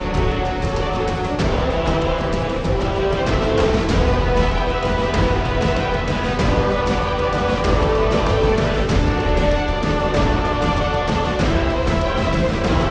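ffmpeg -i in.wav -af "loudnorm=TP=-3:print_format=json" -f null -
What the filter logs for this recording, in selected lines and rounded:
"input_i" : "-19.0",
"input_tp" : "-4.1",
"input_lra" : "1.1",
"input_thresh" : "-29.0",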